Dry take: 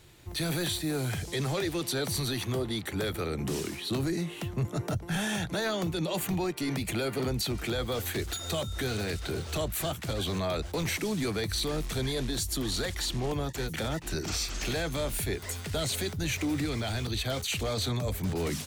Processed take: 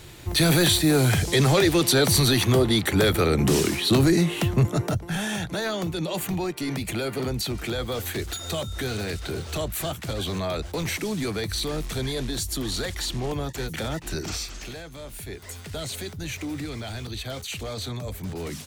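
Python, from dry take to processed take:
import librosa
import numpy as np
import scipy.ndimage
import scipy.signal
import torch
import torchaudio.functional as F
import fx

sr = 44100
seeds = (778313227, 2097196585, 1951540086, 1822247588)

y = fx.gain(x, sr, db=fx.line((4.53, 11.5), (5.14, 2.5), (14.26, 2.5), (14.89, -9.5), (15.58, -2.0)))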